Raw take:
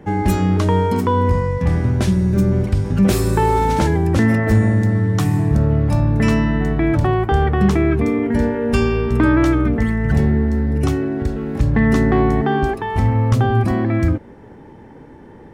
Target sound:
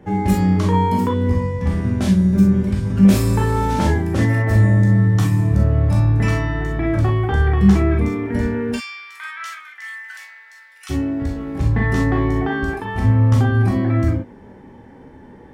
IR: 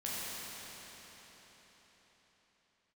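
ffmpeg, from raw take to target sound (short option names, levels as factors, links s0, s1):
-filter_complex "[0:a]asplit=3[s0][s1][s2];[s0]afade=t=out:st=8.72:d=0.02[s3];[s1]highpass=f=1500:w=0.5412,highpass=f=1500:w=1.3066,afade=t=in:st=8.72:d=0.02,afade=t=out:st=10.89:d=0.02[s4];[s2]afade=t=in:st=10.89:d=0.02[s5];[s3][s4][s5]amix=inputs=3:normalize=0[s6];[1:a]atrim=start_sample=2205,atrim=end_sample=3087[s7];[s6][s7]afir=irnorm=-1:irlink=0"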